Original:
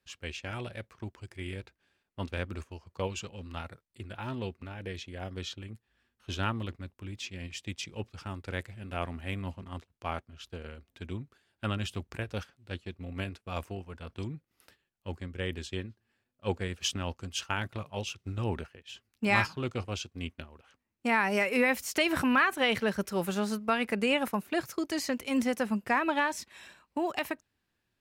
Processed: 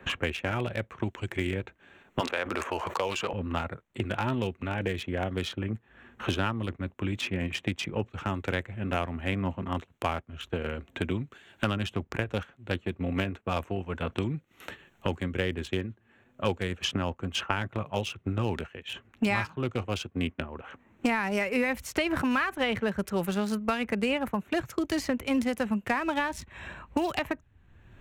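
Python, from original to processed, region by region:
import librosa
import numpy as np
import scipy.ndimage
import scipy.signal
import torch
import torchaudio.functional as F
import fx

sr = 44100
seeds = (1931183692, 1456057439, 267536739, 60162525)

y = fx.chain(x, sr, fx.highpass(hz=550.0, slope=12),
    fx.env_flatten(amount_pct=70), at=(2.2, 3.33))
y = fx.wiener(y, sr, points=9)
y = fx.band_squash(y, sr, depth_pct=100)
y = F.gain(torch.from_numpy(y), 3.0).numpy()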